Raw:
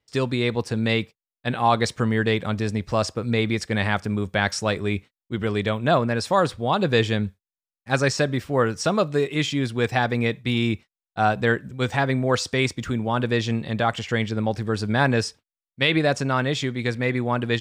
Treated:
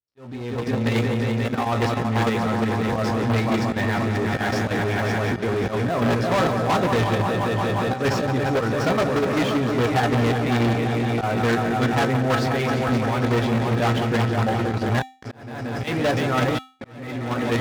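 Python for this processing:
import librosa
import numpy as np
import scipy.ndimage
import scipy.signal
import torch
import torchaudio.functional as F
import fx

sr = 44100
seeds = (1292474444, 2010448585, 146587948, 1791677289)

y = fx.echo_heads(x, sr, ms=177, heads='all three', feedback_pct=69, wet_db=-11)
y = fx.hpss(y, sr, part='harmonic', gain_db=-3)
y = fx.step_gate(y, sr, bpm=67, pattern='xx.x.xxxx', floor_db=-60.0, edge_ms=4.5, at=(14.84, 16.9), fade=0.02)
y = fx.auto_swell(y, sr, attack_ms=145.0)
y = fx.spacing_loss(y, sr, db_at_10k=29)
y = fx.doubler(y, sr, ms=17.0, db=-5)
y = fx.level_steps(y, sr, step_db=11)
y = fx.leveller(y, sr, passes=5)
y = scipy.signal.sosfilt(scipy.signal.butter(2, 46.0, 'highpass', fs=sr, output='sos'), y)
y = fx.comb_fb(y, sr, f0_hz=260.0, decay_s=0.39, harmonics='odd', damping=0.0, mix_pct=70)
y = fx.auto_swell(y, sr, attack_ms=738.0)
y = y * librosa.db_to_amplitude(5.0)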